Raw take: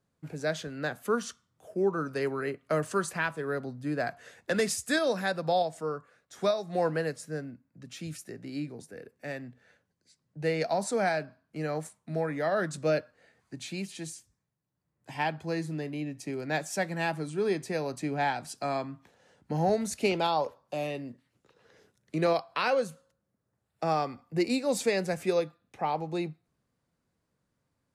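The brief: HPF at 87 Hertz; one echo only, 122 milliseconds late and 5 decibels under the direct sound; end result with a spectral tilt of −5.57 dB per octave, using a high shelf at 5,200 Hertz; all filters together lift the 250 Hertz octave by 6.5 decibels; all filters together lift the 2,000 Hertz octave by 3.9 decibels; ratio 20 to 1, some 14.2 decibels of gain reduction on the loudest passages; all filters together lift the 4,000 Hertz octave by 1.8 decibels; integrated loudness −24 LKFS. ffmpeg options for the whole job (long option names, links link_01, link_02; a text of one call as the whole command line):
ffmpeg -i in.wav -af "highpass=87,equalizer=frequency=250:width_type=o:gain=9,equalizer=frequency=2000:width_type=o:gain=5,equalizer=frequency=4000:width_type=o:gain=3.5,highshelf=frequency=5200:gain=-6.5,acompressor=threshold=-31dB:ratio=20,aecho=1:1:122:0.562,volume=12dB" out.wav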